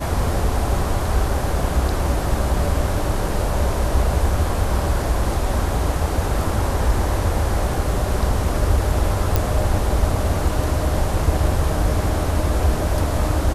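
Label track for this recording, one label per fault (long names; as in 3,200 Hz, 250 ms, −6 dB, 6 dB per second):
9.360000	9.360000	click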